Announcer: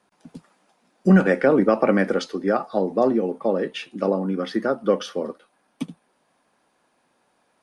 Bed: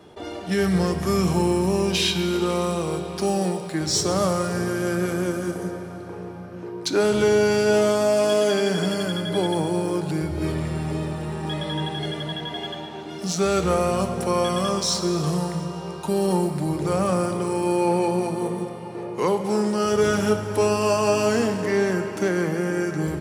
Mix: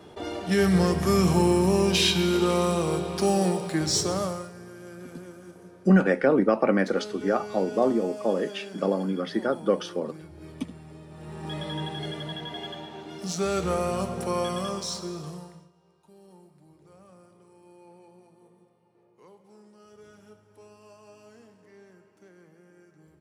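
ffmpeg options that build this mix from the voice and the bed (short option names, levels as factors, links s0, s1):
-filter_complex "[0:a]adelay=4800,volume=0.668[s0];[1:a]volume=4.73,afade=t=out:st=3.75:d=0.77:silence=0.112202,afade=t=in:st=11.08:d=0.5:silence=0.211349,afade=t=out:st=14.39:d=1.32:silence=0.0501187[s1];[s0][s1]amix=inputs=2:normalize=0"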